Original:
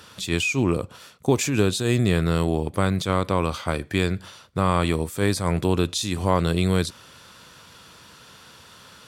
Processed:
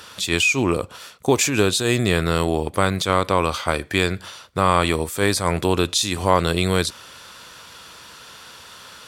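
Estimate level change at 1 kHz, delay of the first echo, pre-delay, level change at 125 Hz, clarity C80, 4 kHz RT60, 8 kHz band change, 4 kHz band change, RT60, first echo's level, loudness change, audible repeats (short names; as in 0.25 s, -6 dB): +5.5 dB, none, none, -1.0 dB, none, none, +6.5 dB, +6.5 dB, none, none, +3.0 dB, none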